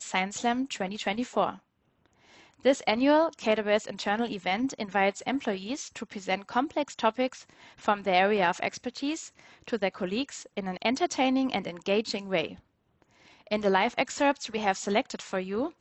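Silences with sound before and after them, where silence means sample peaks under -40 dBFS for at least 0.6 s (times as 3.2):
1.55–2.65
12.55–13.47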